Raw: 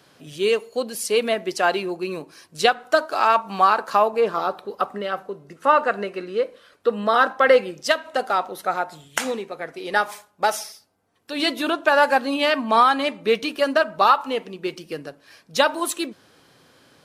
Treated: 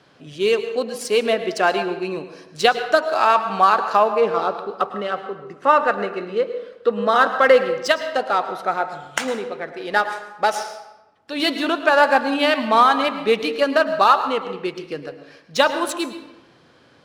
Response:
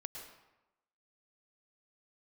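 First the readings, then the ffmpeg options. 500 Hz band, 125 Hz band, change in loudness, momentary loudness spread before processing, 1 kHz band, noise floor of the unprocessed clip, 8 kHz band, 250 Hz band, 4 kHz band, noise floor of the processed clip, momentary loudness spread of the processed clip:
+2.0 dB, no reading, +2.0 dB, 14 LU, +2.0 dB, -57 dBFS, -2.0 dB, +2.0 dB, +1.5 dB, -53 dBFS, 13 LU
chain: -filter_complex "[0:a]adynamicsmooth=sensitivity=3.5:basefreq=5300,asplit=2[s0][s1];[1:a]atrim=start_sample=2205[s2];[s1][s2]afir=irnorm=-1:irlink=0,volume=1.19[s3];[s0][s3]amix=inputs=2:normalize=0,volume=0.708"

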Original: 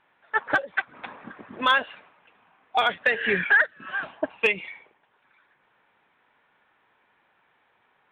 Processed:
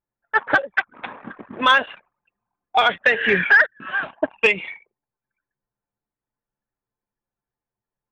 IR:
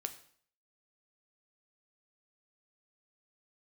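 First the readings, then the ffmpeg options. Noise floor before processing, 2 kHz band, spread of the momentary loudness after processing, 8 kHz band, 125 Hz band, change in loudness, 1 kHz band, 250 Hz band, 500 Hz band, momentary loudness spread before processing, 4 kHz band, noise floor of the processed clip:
-67 dBFS, +5.5 dB, 21 LU, no reading, +5.5 dB, +5.5 dB, +5.5 dB, +5.5 dB, +5.5 dB, 21 LU, +5.5 dB, under -85 dBFS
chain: -af "anlmdn=0.0398,bandreject=f=4700:w=8.7,acontrast=47"

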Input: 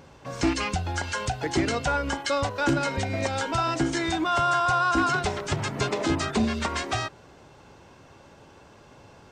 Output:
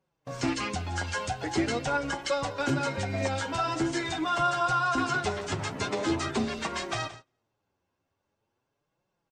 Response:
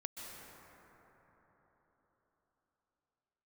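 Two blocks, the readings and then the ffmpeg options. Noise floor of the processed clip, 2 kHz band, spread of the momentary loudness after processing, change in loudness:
-81 dBFS, -3.5 dB, 7 LU, -3.5 dB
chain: -filter_complex "[0:a]flanger=delay=5.2:depth=6.6:regen=1:speed=0.44:shape=triangular,acrossover=split=110[s0][s1];[s0]asoftclip=type=tanh:threshold=0.0133[s2];[s2][s1]amix=inputs=2:normalize=0,aecho=1:1:173|346|519:0.178|0.048|0.013,agate=range=0.0501:threshold=0.00794:ratio=16:detection=peak" -ar 32000 -c:a libmp3lame -b:a 56k

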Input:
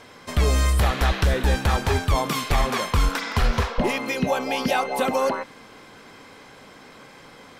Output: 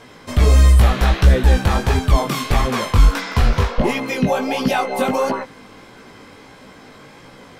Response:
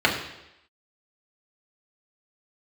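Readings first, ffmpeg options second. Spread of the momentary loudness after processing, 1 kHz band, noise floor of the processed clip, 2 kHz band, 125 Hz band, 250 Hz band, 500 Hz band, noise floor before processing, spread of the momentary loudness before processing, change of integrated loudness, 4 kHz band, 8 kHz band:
7 LU, +3.0 dB, -44 dBFS, +2.0 dB, +8.0 dB, +6.0 dB, +4.0 dB, -47 dBFS, 4 LU, +6.0 dB, +2.0 dB, +2.0 dB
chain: -af "flanger=delay=15.5:depth=5.2:speed=1.5,lowshelf=f=370:g=5.5,volume=1.78"

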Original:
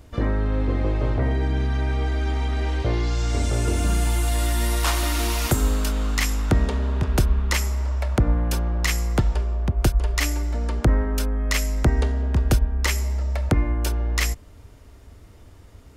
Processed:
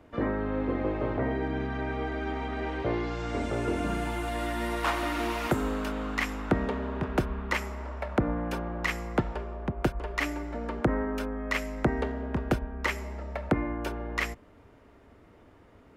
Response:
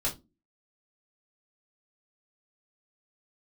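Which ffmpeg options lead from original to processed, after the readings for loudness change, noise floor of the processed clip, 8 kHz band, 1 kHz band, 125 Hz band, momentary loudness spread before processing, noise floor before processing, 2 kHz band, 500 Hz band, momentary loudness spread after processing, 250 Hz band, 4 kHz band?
-7.5 dB, -56 dBFS, -17.0 dB, -1.0 dB, -12.5 dB, 3 LU, -47 dBFS, -3.0 dB, -1.0 dB, 5 LU, -2.5 dB, -10.0 dB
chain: -filter_complex "[0:a]acrossover=split=160 2700:gain=0.178 1 0.141[s0][s1][s2];[s0][s1][s2]amix=inputs=3:normalize=0,volume=0.891"

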